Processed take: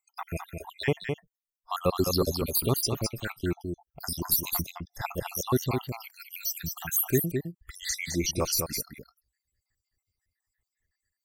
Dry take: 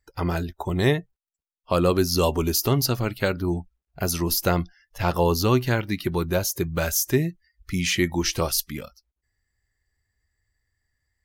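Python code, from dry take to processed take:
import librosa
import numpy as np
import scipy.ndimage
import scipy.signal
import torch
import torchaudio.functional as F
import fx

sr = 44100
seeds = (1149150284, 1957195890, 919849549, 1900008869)

y = fx.spec_dropout(x, sr, seeds[0], share_pct=71)
y = fx.high_shelf(y, sr, hz=7400.0, db=9.5)
y = y + 10.0 ** (-5.5 / 20.0) * np.pad(y, (int(211 * sr / 1000.0), 0))[:len(y)]
y = y * librosa.db_to_amplitude(-3.5)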